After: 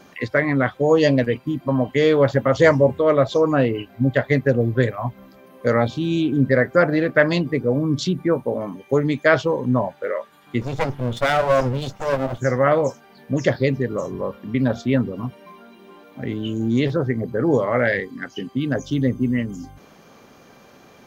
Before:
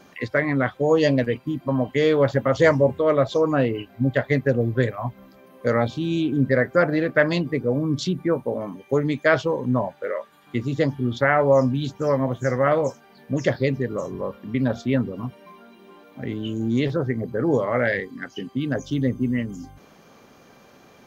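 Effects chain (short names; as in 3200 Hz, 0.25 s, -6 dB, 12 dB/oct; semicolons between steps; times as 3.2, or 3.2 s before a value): 10.61–12.38 minimum comb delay 1.4 ms; gain +2.5 dB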